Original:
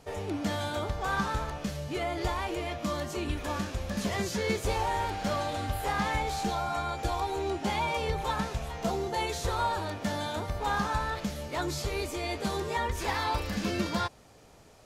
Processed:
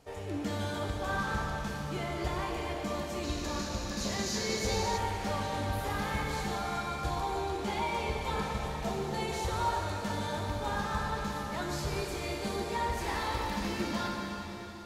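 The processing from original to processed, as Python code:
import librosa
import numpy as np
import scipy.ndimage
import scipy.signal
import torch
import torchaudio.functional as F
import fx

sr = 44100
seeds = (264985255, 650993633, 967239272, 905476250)

y = fx.rev_plate(x, sr, seeds[0], rt60_s=4.1, hf_ratio=0.95, predelay_ms=0, drr_db=-1.0)
y = fx.spec_box(y, sr, start_s=3.23, length_s=1.75, low_hz=3600.0, high_hz=7400.0, gain_db=8)
y = y * 10.0 ** (-6.0 / 20.0)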